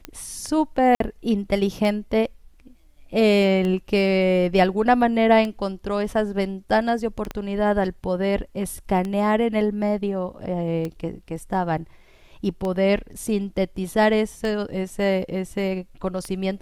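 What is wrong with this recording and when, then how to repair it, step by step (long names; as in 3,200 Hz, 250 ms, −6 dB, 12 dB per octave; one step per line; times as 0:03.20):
scratch tick 33 1/3 rpm −16 dBFS
0:00.95–0:01.00: drop-out 53 ms
0:07.31: click −15 dBFS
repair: click removal
repair the gap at 0:00.95, 53 ms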